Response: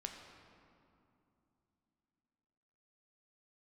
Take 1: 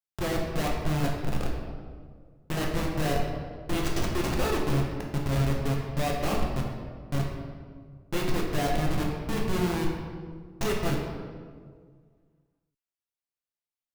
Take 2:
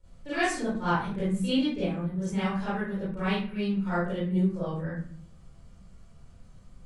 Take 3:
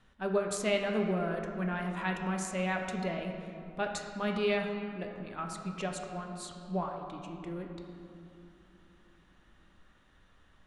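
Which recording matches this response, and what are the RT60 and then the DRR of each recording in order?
3; 1.8, 0.50, 2.8 seconds; −2.0, −13.5, 2.5 decibels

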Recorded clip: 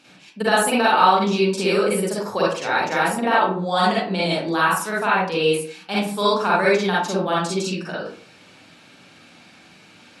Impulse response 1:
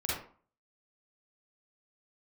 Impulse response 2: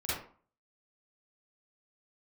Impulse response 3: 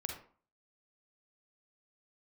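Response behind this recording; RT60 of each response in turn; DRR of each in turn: 1; 0.45, 0.45, 0.45 seconds; −7.0, −11.5, 2.0 decibels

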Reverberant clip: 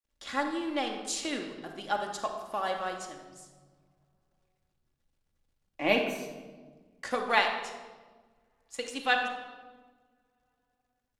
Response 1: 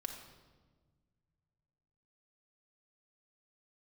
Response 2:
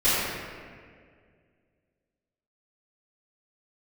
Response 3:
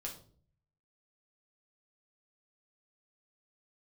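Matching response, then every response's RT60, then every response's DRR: 1; 1.4, 2.0, 0.50 seconds; 2.5, −15.5, −1.5 decibels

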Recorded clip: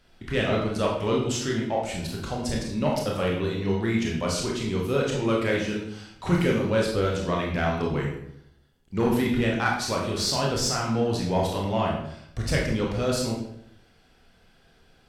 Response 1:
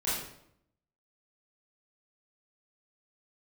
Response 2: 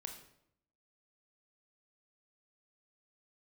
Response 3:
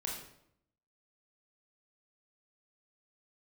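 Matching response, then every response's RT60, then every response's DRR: 3; 0.70, 0.75, 0.70 seconds; −11.0, 3.5, −2.5 decibels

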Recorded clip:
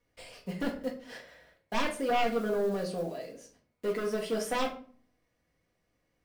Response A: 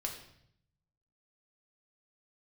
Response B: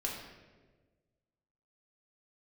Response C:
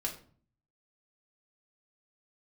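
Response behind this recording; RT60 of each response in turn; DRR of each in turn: C; 0.70, 1.4, 0.45 seconds; 0.5, −3.0, −0.5 decibels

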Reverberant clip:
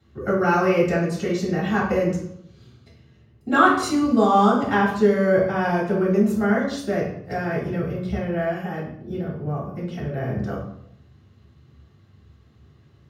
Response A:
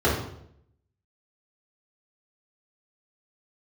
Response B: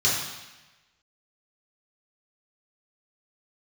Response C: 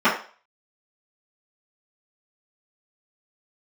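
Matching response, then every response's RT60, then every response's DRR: A; 0.70, 1.1, 0.40 seconds; −8.5, −7.0, −15.0 decibels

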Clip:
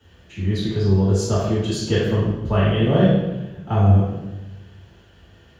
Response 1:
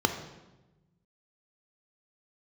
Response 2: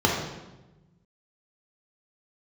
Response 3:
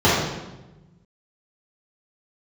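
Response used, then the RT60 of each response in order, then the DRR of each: 3; 1.1, 1.1, 1.1 seconds; 6.0, −2.5, −11.5 decibels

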